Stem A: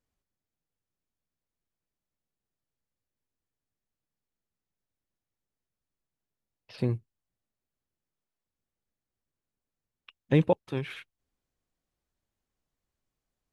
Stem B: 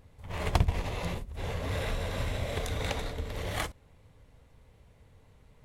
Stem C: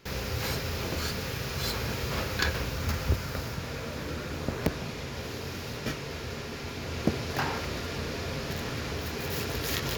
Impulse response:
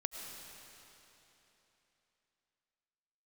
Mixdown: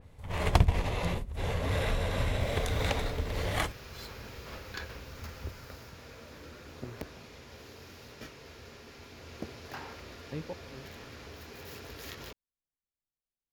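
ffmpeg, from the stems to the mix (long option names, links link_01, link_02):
-filter_complex "[0:a]volume=-17dB[link_01];[1:a]volume=2.5dB[link_02];[2:a]equalizer=frequency=150:width=1.5:gain=-6,adelay=2350,volume=-12dB[link_03];[link_01][link_02][link_03]amix=inputs=3:normalize=0,adynamicequalizer=threshold=0.00251:dfrequency=4100:dqfactor=0.7:tfrequency=4100:tqfactor=0.7:attack=5:release=100:ratio=0.375:range=1.5:mode=cutabove:tftype=highshelf"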